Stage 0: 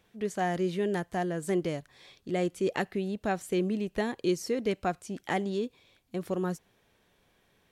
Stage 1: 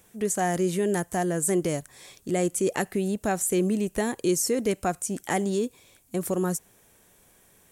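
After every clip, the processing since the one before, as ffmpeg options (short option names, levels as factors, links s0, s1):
-filter_complex "[0:a]highshelf=f=5800:t=q:w=1.5:g=12.5,asplit=2[s0][s1];[s1]alimiter=level_in=1.12:limit=0.0631:level=0:latency=1:release=71,volume=0.891,volume=1[s2];[s0][s2]amix=inputs=2:normalize=0"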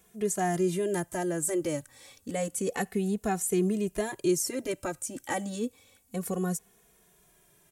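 -filter_complex "[0:a]asplit=2[s0][s1];[s1]adelay=2.4,afreqshift=-0.29[s2];[s0][s2]amix=inputs=2:normalize=1,volume=0.891"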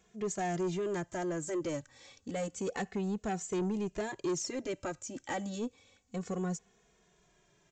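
-af "aresample=16000,asoftclip=type=tanh:threshold=0.0531,aresample=44100,aeval=exprs='0.0668*(cos(1*acos(clip(val(0)/0.0668,-1,1)))-cos(1*PI/2))+0.000422*(cos(4*acos(clip(val(0)/0.0668,-1,1)))-cos(4*PI/2))':c=same,volume=0.75"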